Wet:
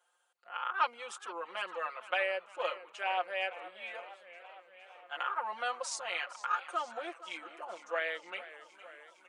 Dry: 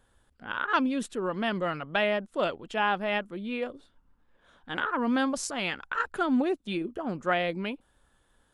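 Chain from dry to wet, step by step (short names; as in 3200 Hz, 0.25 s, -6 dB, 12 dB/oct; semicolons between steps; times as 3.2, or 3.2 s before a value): HPF 630 Hz 24 dB/oct; comb 5.2 ms, depth 97%; speed mistake 48 kHz file played as 44.1 kHz; warbling echo 0.462 s, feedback 70%, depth 135 cents, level -16 dB; gain -7 dB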